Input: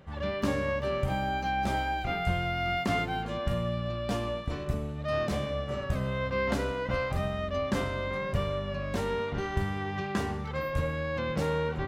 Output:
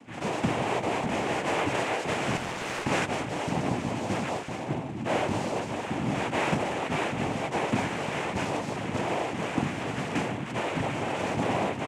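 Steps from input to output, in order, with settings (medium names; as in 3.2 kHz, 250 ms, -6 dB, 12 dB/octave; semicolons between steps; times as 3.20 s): resampled via 8 kHz; noise-vocoded speech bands 4; 2.37–2.85 s: valve stage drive 28 dB, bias 0.8; trim +2.5 dB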